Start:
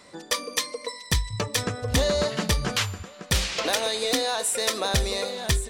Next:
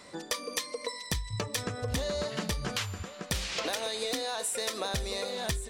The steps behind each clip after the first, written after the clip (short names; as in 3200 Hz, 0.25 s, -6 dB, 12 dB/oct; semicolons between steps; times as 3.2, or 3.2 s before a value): compressor 5:1, threshold -30 dBFS, peak gain reduction 11 dB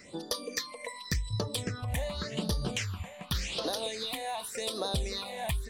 phaser stages 6, 0.88 Hz, lowest notch 340–2300 Hz; gain +1.5 dB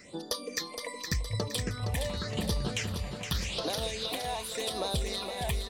feedback echo 0.466 s, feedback 52%, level -7 dB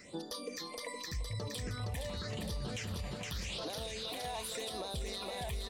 limiter -29 dBFS, peak gain reduction 11.5 dB; gain -2 dB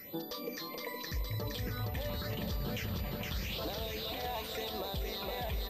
darkening echo 0.296 s, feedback 71%, low-pass 890 Hz, level -10 dB; pulse-width modulation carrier 12000 Hz; gain +2 dB